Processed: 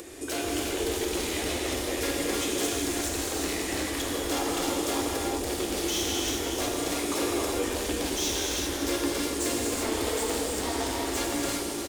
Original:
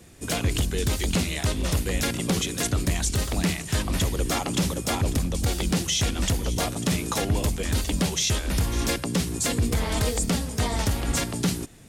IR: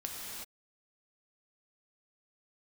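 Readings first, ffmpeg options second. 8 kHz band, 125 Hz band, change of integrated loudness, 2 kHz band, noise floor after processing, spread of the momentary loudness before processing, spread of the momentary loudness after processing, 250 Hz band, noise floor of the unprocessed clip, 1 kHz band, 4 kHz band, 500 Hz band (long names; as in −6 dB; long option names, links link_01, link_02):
−1.5 dB, −15.5 dB, −3.0 dB, −1.5 dB, −33 dBFS, 3 LU, 2 LU, −2.5 dB, −35 dBFS, 0.0 dB, −1.5 dB, +2.0 dB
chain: -filter_complex "[0:a]volume=26.5dB,asoftclip=hard,volume=-26.5dB,lowshelf=frequency=240:width_type=q:width=3:gain=-10.5,aecho=1:1:370:0.316[link_01];[1:a]atrim=start_sample=2205,asetrate=42777,aresample=44100[link_02];[link_01][link_02]afir=irnorm=-1:irlink=0,acompressor=mode=upward:threshold=-35dB:ratio=2.5"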